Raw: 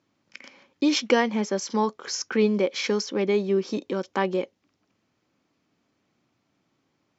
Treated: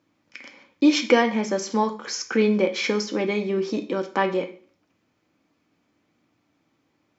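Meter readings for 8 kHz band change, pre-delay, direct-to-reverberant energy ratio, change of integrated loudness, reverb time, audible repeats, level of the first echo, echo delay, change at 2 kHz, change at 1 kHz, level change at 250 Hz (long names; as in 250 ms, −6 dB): can't be measured, 3 ms, 4.0 dB, +2.0 dB, 0.45 s, no echo audible, no echo audible, no echo audible, +3.5 dB, +3.0 dB, +3.0 dB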